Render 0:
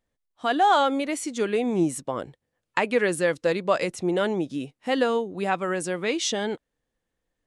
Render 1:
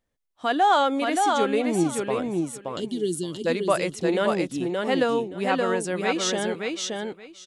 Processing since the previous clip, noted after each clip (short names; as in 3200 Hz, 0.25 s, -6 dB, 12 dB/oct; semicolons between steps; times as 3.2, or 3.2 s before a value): spectral gain 2.62–3.46, 440–2800 Hz -30 dB; on a send: feedback echo 0.574 s, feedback 17%, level -3.5 dB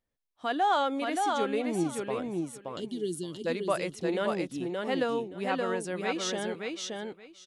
bell 7600 Hz -3.5 dB 0.41 oct; gain -6.5 dB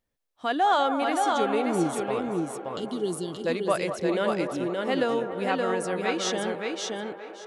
band-limited delay 0.2 s, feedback 76%, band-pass 830 Hz, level -9 dB; gain +3.5 dB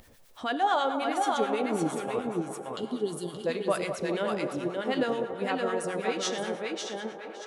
non-linear reverb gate 0.33 s falling, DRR 10 dB; harmonic tremolo 9.2 Hz, depth 70%, crossover 970 Hz; upward compressor, threshold -34 dBFS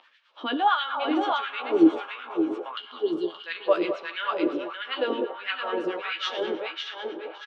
speaker cabinet 170–3800 Hz, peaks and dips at 200 Hz -3 dB, 310 Hz +5 dB, 470 Hz -4 dB, 720 Hz -8 dB, 1900 Hz -6 dB, 3000 Hz +5 dB; doubler 12 ms -6.5 dB; LFO high-pass sine 1.5 Hz 310–1800 Hz; gain +1.5 dB